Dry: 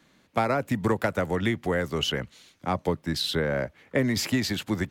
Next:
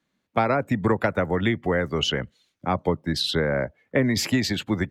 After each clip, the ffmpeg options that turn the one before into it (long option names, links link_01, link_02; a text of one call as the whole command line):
ffmpeg -i in.wav -af "afftdn=noise_reduction=18:noise_floor=-44,volume=3dB" out.wav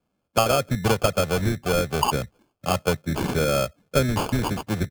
ffmpeg -i in.wav -af "aecho=1:1:1.7:0.51,acrusher=samples=23:mix=1:aa=0.000001" out.wav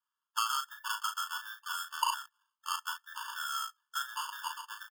ffmpeg -i in.wav -filter_complex "[0:a]asplit=2[link_01][link_02];[link_02]adelay=37,volume=-6dB[link_03];[link_01][link_03]amix=inputs=2:normalize=0,afftfilt=real='re*eq(mod(floor(b*sr/1024/900),2),1)':imag='im*eq(mod(floor(b*sr/1024/900),2),1)':win_size=1024:overlap=0.75,volume=-7dB" out.wav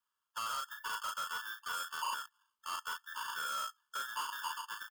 ffmpeg -i in.wav -af "alimiter=level_in=1.5dB:limit=-24dB:level=0:latency=1:release=15,volume=-1.5dB,asoftclip=type=tanh:threshold=-33.5dB,volume=2dB" out.wav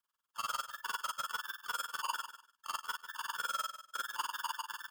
ffmpeg -i in.wav -filter_complex "[0:a]tremolo=f=20:d=0.947,asplit=2[link_01][link_02];[link_02]aecho=0:1:147|294:0.251|0.0452[link_03];[link_01][link_03]amix=inputs=2:normalize=0,volume=4dB" out.wav